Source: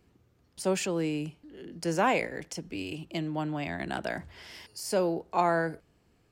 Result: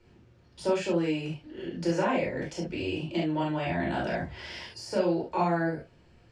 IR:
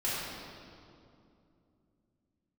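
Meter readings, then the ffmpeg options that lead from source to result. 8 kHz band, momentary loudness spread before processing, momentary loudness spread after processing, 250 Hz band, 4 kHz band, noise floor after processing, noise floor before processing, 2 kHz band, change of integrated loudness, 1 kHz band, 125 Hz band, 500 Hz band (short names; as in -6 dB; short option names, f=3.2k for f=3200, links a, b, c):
-7.5 dB, 16 LU, 11 LU, +3.0 dB, +0.5 dB, -59 dBFS, -67 dBFS, -0.5 dB, +1.0 dB, -1.0 dB, +3.5 dB, +1.5 dB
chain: -filter_complex "[0:a]acrossover=split=310|1200[a][b][c];[a]acompressor=threshold=-39dB:ratio=4[d];[b]acompressor=threshold=-36dB:ratio=4[e];[c]acompressor=threshold=-45dB:ratio=4[f];[d][e][f]amix=inputs=3:normalize=0,lowpass=5.5k[g];[1:a]atrim=start_sample=2205,atrim=end_sample=3528[h];[g][h]afir=irnorm=-1:irlink=0,volume=3.5dB"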